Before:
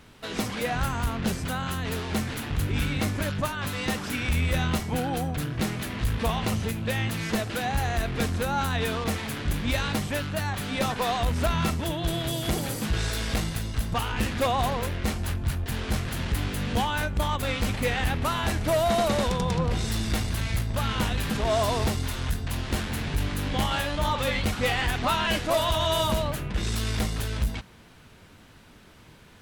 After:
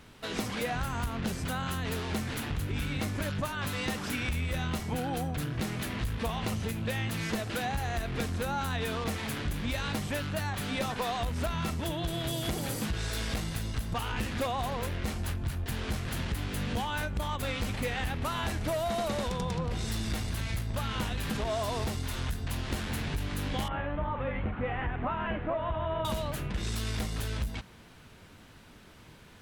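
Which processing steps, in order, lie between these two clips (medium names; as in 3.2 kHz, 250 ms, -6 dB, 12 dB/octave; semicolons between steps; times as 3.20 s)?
23.68–26.05 s: Bessel low-pass 1.5 kHz, order 8; compression, threshold -27 dBFS, peak gain reduction 7 dB; trim -1.5 dB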